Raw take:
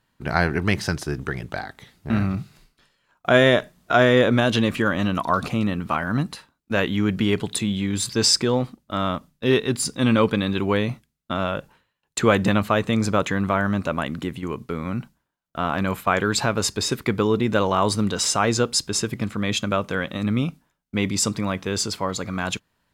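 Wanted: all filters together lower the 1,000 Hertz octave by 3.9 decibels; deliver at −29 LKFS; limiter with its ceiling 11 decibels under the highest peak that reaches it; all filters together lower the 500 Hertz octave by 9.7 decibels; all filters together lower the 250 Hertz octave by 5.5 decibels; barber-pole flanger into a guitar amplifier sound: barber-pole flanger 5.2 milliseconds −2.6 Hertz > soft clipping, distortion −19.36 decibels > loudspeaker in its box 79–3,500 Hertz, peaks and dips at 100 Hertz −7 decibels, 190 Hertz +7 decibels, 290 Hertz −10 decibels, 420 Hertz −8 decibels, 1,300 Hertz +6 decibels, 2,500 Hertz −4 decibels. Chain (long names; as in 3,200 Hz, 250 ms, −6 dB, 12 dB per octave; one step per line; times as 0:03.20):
parametric band 250 Hz −8.5 dB
parametric band 500 Hz −3.5 dB
parametric band 1,000 Hz −8.5 dB
brickwall limiter −16.5 dBFS
barber-pole flanger 5.2 ms −2.6 Hz
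soft clipping −21.5 dBFS
loudspeaker in its box 79–3,500 Hz, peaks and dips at 100 Hz −7 dB, 190 Hz +7 dB, 290 Hz −10 dB, 420 Hz −8 dB, 1,300 Hz +6 dB, 2,500 Hz −4 dB
level +5 dB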